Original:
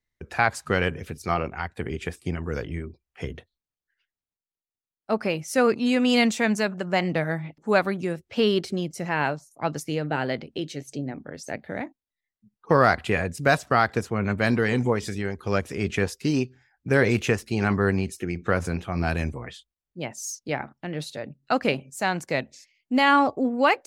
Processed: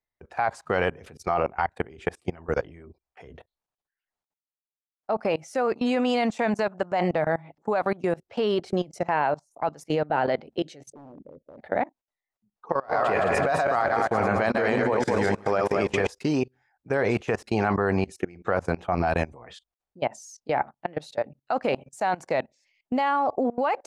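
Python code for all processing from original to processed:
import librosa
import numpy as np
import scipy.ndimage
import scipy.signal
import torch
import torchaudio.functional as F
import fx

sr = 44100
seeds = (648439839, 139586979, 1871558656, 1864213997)

y = fx.chain(x, sr, fx.cheby1_lowpass(hz=560.0, order=5),
    fx.overload_stage(gain_db=32.0), at=(10.92, 11.58))
y = fx.chain(y, sr, fx.reverse_delay_fb(ms=106, feedback_pct=60, wet_db=-4.5),
    fx.low_shelf(hz=110.0, db=-7.0),
    fx.over_compress(threshold_db=-23.0, ratio=-0.5), at=(12.72, 16.08))
y = scipy.signal.sosfilt(scipy.signal.butter(2, 9400.0, 'lowpass', fs=sr, output='sos'), y)
y = fx.peak_eq(y, sr, hz=770.0, db=14.0, octaves=1.7)
y = fx.level_steps(y, sr, step_db=23)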